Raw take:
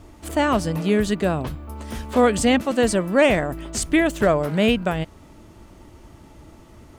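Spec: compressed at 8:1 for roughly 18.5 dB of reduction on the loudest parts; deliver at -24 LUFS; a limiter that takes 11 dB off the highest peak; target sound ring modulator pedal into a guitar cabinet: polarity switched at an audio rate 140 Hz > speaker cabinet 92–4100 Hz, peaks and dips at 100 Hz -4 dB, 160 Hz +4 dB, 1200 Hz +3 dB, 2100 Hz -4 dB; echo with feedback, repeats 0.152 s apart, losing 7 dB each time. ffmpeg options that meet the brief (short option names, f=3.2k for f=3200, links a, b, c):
-af "acompressor=threshold=-32dB:ratio=8,alimiter=level_in=8dB:limit=-24dB:level=0:latency=1,volume=-8dB,aecho=1:1:152|304|456|608|760:0.447|0.201|0.0905|0.0407|0.0183,aeval=exprs='val(0)*sgn(sin(2*PI*140*n/s))':c=same,highpass=92,equalizer=f=100:t=q:w=4:g=-4,equalizer=f=160:t=q:w=4:g=4,equalizer=f=1.2k:t=q:w=4:g=3,equalizer=f=2.1k:t=q:w=4:g=-4,lowpass=f=4.1k:w=0.5412,lowpass=f=4.1k:w=1.3066,volume=17dB"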